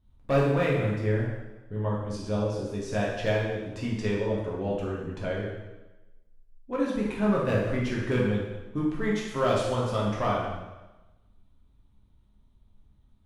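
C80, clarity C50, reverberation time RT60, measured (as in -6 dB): 4.0 dB, 1.0 dB, 1.1 s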